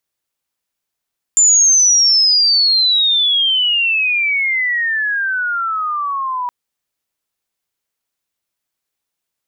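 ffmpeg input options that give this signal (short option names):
-f lavfi -i "aevalsrc='pow(10,(-7-11*t/5.12)/20)*sin(2*PI*7200*5.12/log(970/7200)*(exp(log(970/7200)*t/5.12)-1))':d=5.12:s=44100"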